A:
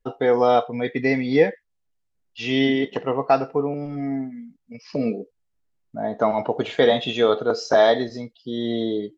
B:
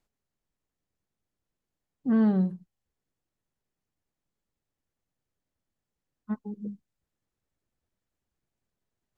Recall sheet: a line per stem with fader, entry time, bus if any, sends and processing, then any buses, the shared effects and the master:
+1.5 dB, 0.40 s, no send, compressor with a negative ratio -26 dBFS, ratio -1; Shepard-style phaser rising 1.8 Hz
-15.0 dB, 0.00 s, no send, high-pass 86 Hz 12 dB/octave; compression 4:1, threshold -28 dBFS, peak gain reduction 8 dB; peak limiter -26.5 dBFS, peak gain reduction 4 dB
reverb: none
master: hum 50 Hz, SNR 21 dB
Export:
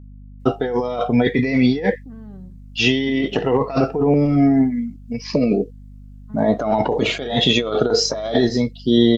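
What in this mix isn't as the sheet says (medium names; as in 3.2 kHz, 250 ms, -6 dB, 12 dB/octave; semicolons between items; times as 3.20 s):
stem A +1.5 dB -> +9.5 dB; stem B -15.0 dB -> -7.0 dB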